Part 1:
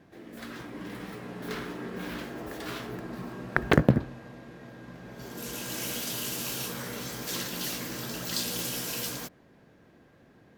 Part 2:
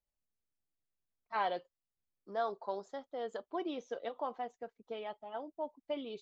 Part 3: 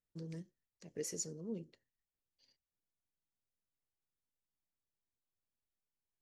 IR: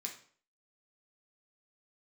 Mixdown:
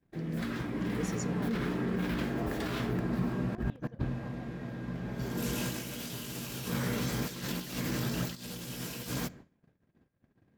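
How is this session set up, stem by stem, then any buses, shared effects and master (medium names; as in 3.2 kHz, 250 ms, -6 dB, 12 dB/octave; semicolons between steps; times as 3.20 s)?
-2.0 dB, 0.00 s, send -13 dB, gate -54 dBFS, range -31 dB; compressor with a negative ratio -37 dBFS, ratio -0.5
-17.0 dB, 0.00 s, no send, none
+1.0 dB, 0.00 s, no send, none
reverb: on, RT60 0.50 s, pre-delay 3 ms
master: tone controls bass +10 dB, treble -4 dB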